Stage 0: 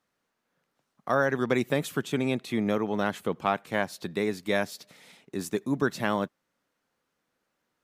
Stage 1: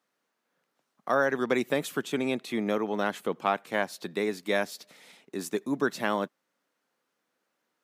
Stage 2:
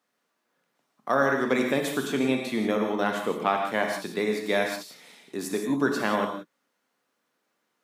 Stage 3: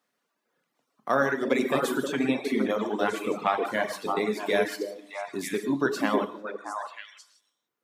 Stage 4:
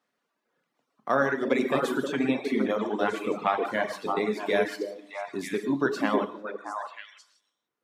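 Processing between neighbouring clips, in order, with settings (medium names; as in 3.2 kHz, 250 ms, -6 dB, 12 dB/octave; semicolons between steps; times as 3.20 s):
high-pass 220 Hz 12 dB/octave
gated-style reverb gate 200 ms flat, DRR 2 dB; trim +1 dB
repeats whose band climbs or falls 313 ms, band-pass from 360 Hz, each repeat 1.4 oct, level 0 dB; reverb removal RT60 1.4 s
treble shelf 6.9 kHz -10 dB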